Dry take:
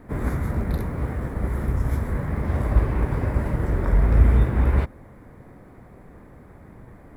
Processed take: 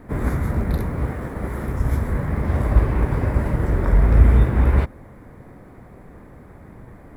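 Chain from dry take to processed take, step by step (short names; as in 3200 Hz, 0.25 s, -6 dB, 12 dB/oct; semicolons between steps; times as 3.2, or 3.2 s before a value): 1.11–1.8 low shelf 130 Hz -8 dB; gain +3 dB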